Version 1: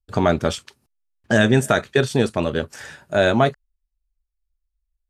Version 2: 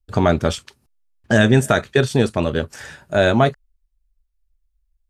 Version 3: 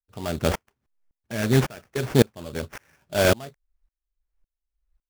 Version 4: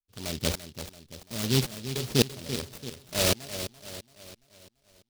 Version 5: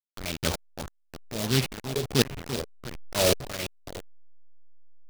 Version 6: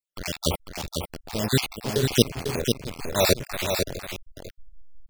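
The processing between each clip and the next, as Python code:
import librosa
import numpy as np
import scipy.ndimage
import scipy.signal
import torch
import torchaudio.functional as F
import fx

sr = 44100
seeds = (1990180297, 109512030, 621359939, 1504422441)

y1 = fx.low_shelf(x, sr, hz=80.0, db=9.0)
y1 = F.gain(torch.from_numpy(y1), 1.0).numpy()
y2 = fx.sample_hold(y1, sr, seeds[0], rate_hz=4000.0, jitter_pct=20)
y2 = fx.tremolo_decay(y2, sr, direction='swelling', hz=1.8, depth_db=31)
y2 = F.gain(torch.from_numpy(y2), 1.5).numpy()
y3 = fx.echo_feedback(y2, sr, ms=338, feedback_pct=48, wet_db=-11.0)
y3 = fx.noise_mod_delay(y3, sr, seeds[1], noise_hz=3900.0, depth_ms=0.27)
y3 = F.gain(torch.from_numpy(y3), -5.5).numpy()
y4 = fx.delta_hold(y3, sr, step_db=-31.5)
y4 = fx.bell_lfo(y4, sr, hz=1.5, low_hz=450.0, high_hz=2600.0, db=8)
y5 = fx.spec_dropout(y4, sr, seeds[2], share_pct=42)
y5 = y5 + 10.0 ** (-5.5 / 20.0) * np.pad(y5, (int(498 * sr / 1000.0), 0))[:len(y5)]
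y5 = F.gain(torch.from_numpy(y5), 4.5).numpy()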